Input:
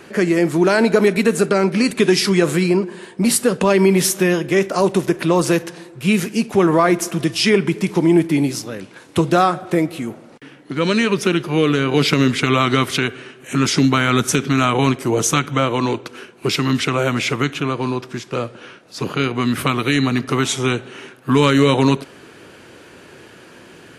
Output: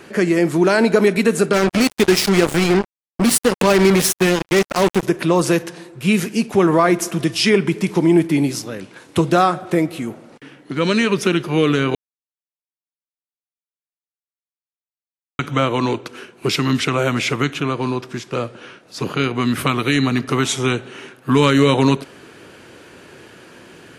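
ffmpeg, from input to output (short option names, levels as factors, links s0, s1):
-filter_complex "[0:a]asettb=1/sr,asplit=3[s0][s1][s2];[s0]atrim=end=1.534[s3];[s1]atrim=start=1.53:end=5.03,asetpts=PTS-STARTPTS,afade=t=in:d=0.004:c=qsin,afade=t=out:st=3.496:d=0.004:c=qsin,acrusher=bits=2:mix=0:aa=0.5[s4];[s2]atrim=start=5.026[s5];[s3][s4]acrossfade=d=0.004:c1=hsin:c2=qsin[s6];[s6][s5]acrossfade=d=0.004:c1=qsin:c2=hsin,asplit=3[s7][s8][s9];[s7]atrim=end=11.95,asetpts=PTS-STARTPTS,afade=t=out:st=11.946:d=0.004:c=hsin[s10];[s8]atrim=start=11.95:end=15.39,asetpts=PTS-STARTPTS,volume=0[s11];[s9]atrim=start=15.39,asetpts=PTS-STARTPTS,afade=t=in:d=0.004:c=hsin[s12];[s10][s11][s12]concat=n=3:v=0:a=1"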